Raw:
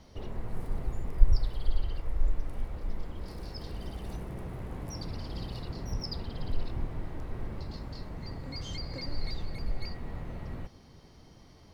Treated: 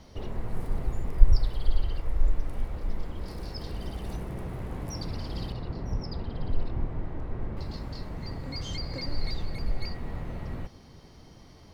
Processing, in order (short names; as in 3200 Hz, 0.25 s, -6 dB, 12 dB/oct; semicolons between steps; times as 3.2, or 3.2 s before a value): 5.52–7.57 LPF 1700 Hz 6 dB/oct; gain +3.5 dB